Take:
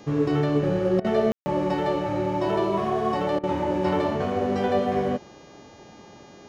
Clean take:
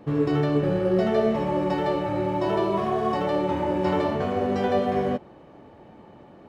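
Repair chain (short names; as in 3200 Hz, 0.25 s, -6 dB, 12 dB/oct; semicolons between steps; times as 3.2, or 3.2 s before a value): de-hum 406.5 Hz, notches 17; room tone fill 1.32–1.46; interpolate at 1/3.39, 43 ms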